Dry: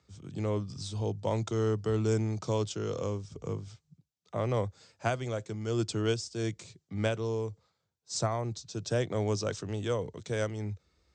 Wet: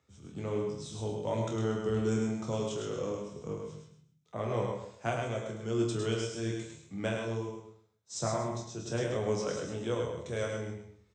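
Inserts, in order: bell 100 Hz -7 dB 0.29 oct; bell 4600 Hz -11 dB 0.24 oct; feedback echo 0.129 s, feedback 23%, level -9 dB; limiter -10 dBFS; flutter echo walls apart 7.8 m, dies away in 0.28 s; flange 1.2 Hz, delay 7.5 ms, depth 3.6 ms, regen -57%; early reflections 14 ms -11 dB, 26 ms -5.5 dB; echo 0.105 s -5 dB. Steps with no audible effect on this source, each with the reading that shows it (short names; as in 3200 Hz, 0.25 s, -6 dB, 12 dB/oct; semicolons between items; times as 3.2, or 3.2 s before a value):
limiter -10 dBFS: input peak -14.5 dBFS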